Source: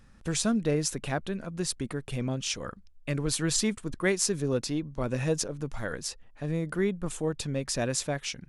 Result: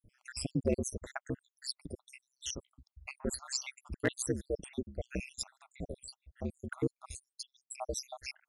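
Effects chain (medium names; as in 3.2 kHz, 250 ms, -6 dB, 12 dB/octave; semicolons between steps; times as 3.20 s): random holes in the spectrogram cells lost 78%; ring modulator 65 Hz; overload inside the chain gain 19 dB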